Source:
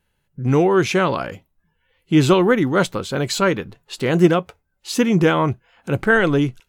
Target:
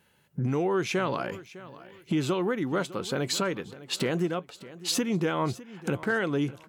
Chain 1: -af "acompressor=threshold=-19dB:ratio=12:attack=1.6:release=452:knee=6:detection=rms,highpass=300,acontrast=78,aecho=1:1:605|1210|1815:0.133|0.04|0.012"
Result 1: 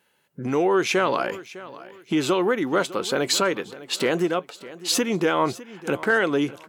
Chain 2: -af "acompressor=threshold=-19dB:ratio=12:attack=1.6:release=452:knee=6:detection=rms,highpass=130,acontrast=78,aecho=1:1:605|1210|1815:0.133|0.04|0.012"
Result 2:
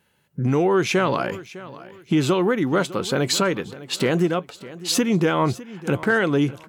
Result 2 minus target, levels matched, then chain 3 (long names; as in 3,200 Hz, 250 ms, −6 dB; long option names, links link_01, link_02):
downward compressor: peak gain reduction −8 dB
-af "acompressor=threshold=-27.5dB:ratio=12:attack=1.6:release=452:knee=6:detection=rms,highpass=130,acontrast=78,aecho=1:1:605|1210|1815:0.133|0.04|0.012"